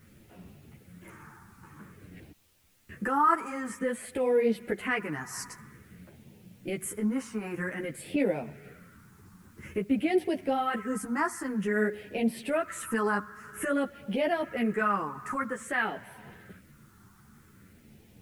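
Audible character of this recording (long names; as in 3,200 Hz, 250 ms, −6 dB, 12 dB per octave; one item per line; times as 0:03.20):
phaser sweep stages 4, 0.51 Hz, lowest notch 570–1,200 Hz
a quantiser's noise floor 12 bits, dither triangular
a shimmering, thickened sound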